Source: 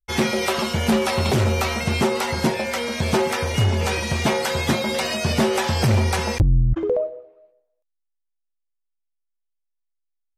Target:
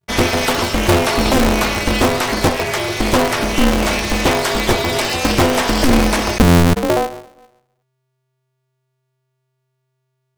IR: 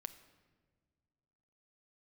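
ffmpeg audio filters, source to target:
-af "aeval=exprs='val(0)*sgn(sin(2*PI*130*n/s))':channel_layout=same,volume=5.5dB"

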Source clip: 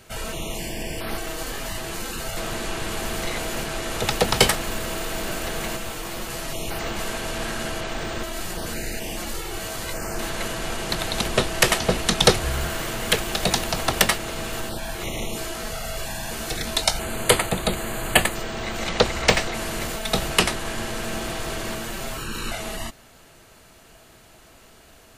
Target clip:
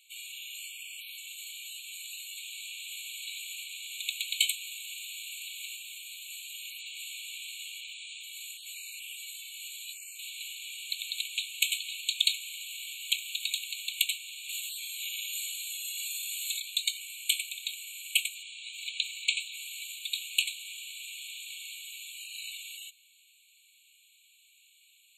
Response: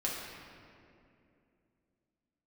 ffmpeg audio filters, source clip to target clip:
-filter_complex "[0:a]asettb=1/sr,asplit=3[link_01][link_02][link_03];[link_01]atrim=end=14.494[link_04];[link_02]atrim=start=14.49:end=16.6,asetpts=PTS-STARTPTS,afade=type=in:duration=0.004:curve=qsin,afade=type=out:start_time=2.106:duration=0.004:curve=qsin,highshelf=frequency=3000:gain=8.5[link_05];[link_03]atrim=start=16.596[link_06];[link_04][link_05]acrossfade=duration=0.004:curve1=hsin:curve2=qsin[link_07];[link_07][link_06]acrossfade=duration=0.004:curve1=qsin:curve2=hsin,afftfilt=real='re*eq(mod(floor(b*sr/1024/2200),2),1)':imag='im*eq(mod(floor(b*sr/1024/2200),2),1)':win_size=1024:overlap=0.75,volume=-5dB"

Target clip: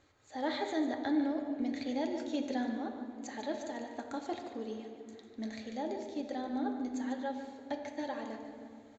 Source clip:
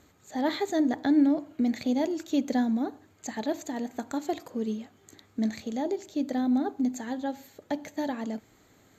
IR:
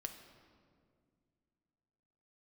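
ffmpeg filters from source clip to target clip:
-filter_complex "[0:a]lowpass=frequency=6200:width=0.5412,lowpass=frequency=6200:width=1.3066,equalizer=frequency=200:width_type=o:width=0.92:gain=-12,aecho=1:1:147:0.299[link_01];[1:a]atrim=start_sample=2205,asetrate=34398,aresample=44100[link_02];[link_01][link_02]afir=irnorm=-1:irlink=0,volume=-3dB"

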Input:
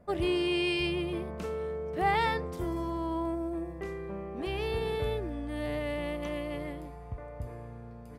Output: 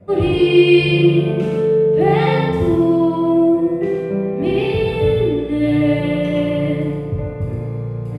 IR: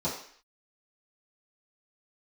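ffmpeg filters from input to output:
-filter_complex "[0:a]equalizer=frequency=170:width_type=o:width=1.5:gain=3,areverse,acompressor=mode=upward:threshold=-35dB:ratio=2.5,areverse,lowshelf=frequency=95:gain=-8.5,asplit=2[link_01][link_02];[link_02]alimiter=level_in=1.5dB:limit=-24dB:level=0:latency=1,volume=-1.5dB,volume=-0.5dB[link_03];[link_01][link_03]amix=inputs=2:normalize=0,aecho=1:1:61.22|113.7:0.282|0.631[link_04];[1:a]atrim=start_sample=2205,asetrate=25137,aresample=44100[link_05];[link_04][link_05]afir=irnorm=-1:irlink=0,volume=-5.5dB"

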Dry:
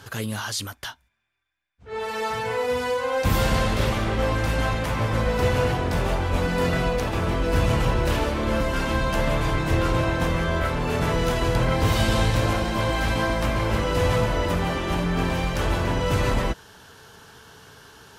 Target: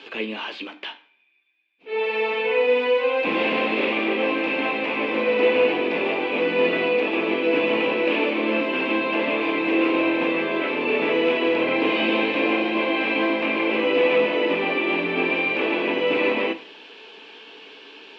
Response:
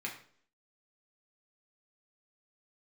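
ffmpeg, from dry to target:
-filter_complex "[0:a]acrossover=split=2500[link_01][link_02];[link_02]acompressor=threshold=-49dB:ratio=4:attack=1:release=60[link_03];[link_01][link_03]amix=inputs=2:normalize=0,aexciter=amount=3.8:drive=4:freq=2500,highpass=frequency=260:width=0.5412,highpass=frequency=260:width=1.3066,equalizer=frequency=300:width_type=q:width=4:gain=9,equalizer=frequency=460:width_type=q:width=4:gain=6,equalizer=frequency=1400:width_type=q:width=4:gain=-7,equalizer=frequency=2500:width_type=q:width=4:gain=8,lowpass=frequency=3200:width=0.5412,lowpass=frequency=3200:width=1.3066,asplit=2[link_04][link_05];[1:a]atrim=start_sample=2205,highshelf=frequency=5300:gain=9[link_06];[link_05][link_06]afir=irnorm=-1:irlink=0,volume=-5.5dB[link_07];[link_04][link_07]amix=inputs=2:normalize=0,volume=-1.5dB"

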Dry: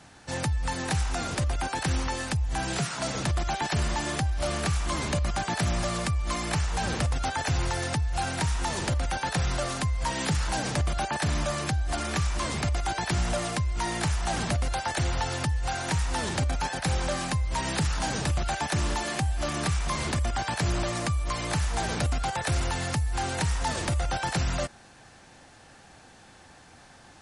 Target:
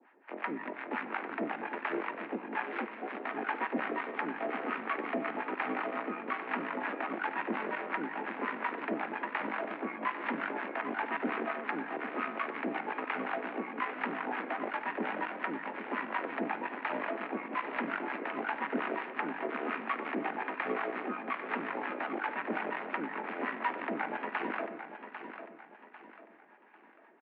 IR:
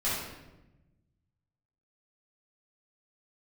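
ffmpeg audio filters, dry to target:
-filter_complex "[0:a]aeval=exprs='0.141*(cos(1*acos(clip(val(0)/0.141,-1,1)))-cos(1*PI/2))+0.0282*(cos(4*acos(clip(val(0)/0.141,-1,1)))-cos(4*PI/2))+0.0316*(cos(7*acos(clip(val(0)/0.141,-1,1)))-cos(7*PI/2))':channel_layout=same,acrossover=split=620[link_01][link_02];[link_01]aeval=exprs='val(0)*(1-1/2+1/2*cos(2*PI*5.6*n/s))':channel_layout=same[link_03];[link_02]aeval=exprs='val(0)*(1-1/2-1/2*cos(2*PI*5.6*n/s))':channel_layout=same[link_04];[link_03][link_04]amix=inputs=2:normalize=0,aecho=1:1:797|1594|2391|3188:0.316|0.12|0.0457|0.0174,asplit=2[link_05][link_06];[1:a]atrim=start_sample=2205,adelay=36[link_07];[link_06][link_07]afir=irnorm=-1:irlink=0,volume=-22dB[link_08];[link_05][link_08]amix=inputs=2:normalize=0,highpass=frequency=180:width_type=q:width=0.5412,highpass=frequency=180:width_type=q:width=1.307,lowpass=frequency=2300:width_type=q:width=0.5176,lowpass=frequency=2300:width_type=q:width=0.7071,lowpass=frequency=2300:width_type=q:width=1.932,afreqshift=83"

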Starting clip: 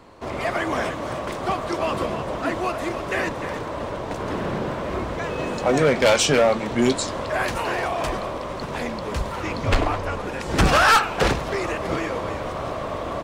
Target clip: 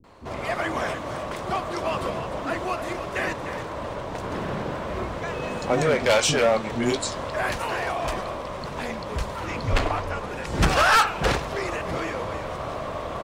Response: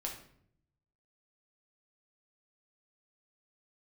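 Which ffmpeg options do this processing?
-filter_complex "[0:a]acrossover=split=310[link_01][link_02];[link_02]adelay=40[link_03];[link_01][link_03]amix=inputs=2:normalize=0,volume=-2dB"

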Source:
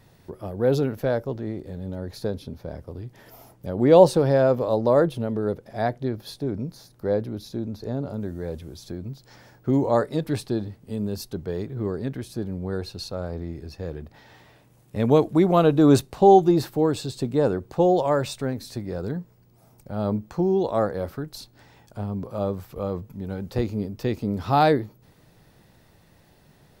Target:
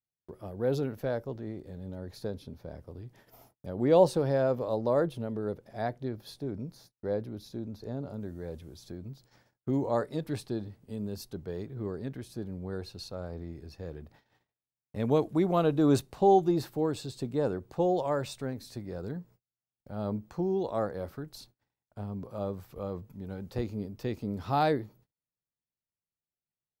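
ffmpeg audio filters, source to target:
ffmpeg -i in.wav -af "agate=range=-39dB:threshold=-48dB:ratio=16:detection=peak,volume=-8dB" out.wav

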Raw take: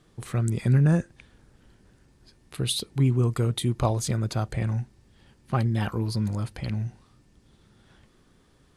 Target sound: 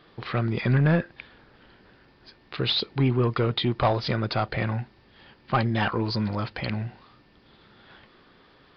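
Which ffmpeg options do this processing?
ffmpeg -i in.wav -filter_complex "[0:a]asplit=2[link_01][link_02];[link_02]highpass=frequency=720:poles=1,volume=17dB,asoftclip=type=tanh:threshold=-11dB[link_03];[link_01][link_03]amix=inputs=2:normalize=0,lowpass=frequency=3500:poles=1,volume=-6dB,aresample=11025,aresample=44100" out.wav

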